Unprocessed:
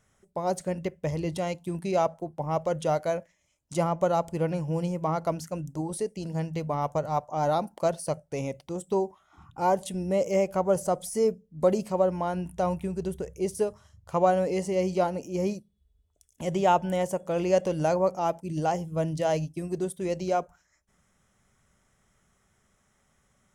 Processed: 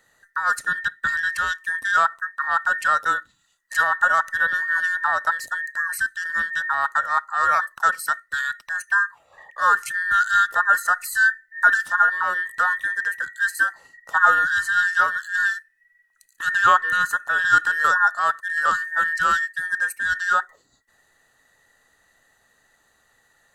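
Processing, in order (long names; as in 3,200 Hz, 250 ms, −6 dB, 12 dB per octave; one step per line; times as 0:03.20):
frequency inversion band by band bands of 2,000 Hz
level +6 dB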